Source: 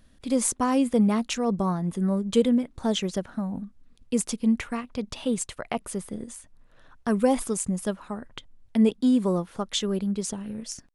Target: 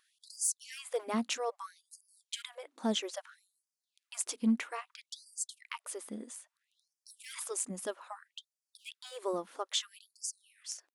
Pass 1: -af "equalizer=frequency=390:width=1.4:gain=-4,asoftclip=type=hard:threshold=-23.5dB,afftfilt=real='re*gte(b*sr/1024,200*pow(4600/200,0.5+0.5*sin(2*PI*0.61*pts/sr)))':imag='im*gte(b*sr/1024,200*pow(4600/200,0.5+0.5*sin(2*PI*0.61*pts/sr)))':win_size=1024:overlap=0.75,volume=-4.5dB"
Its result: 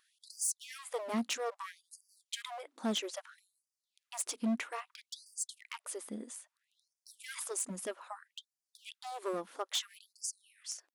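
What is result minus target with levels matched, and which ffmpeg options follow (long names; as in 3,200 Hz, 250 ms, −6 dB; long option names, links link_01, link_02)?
hard clipping: distortion +14 dB
-af "equalizer=frequency=390:width=1.4:gain=-4,asoftclip=type=hard:threshold=-16.5dB,afftfilt=real='re*gte(b*sr/1024,200*pow(4600/200,0.5+0.5*sin(2*PI*0.61*pts/sr)))':imag='im*gte(b*sr/1024,200*pow(4600/200,0.5+0.5*sin(2*PI*0.61*pts/sr)))':win_size=1024:overlap=0.75,volume=-4.5dB"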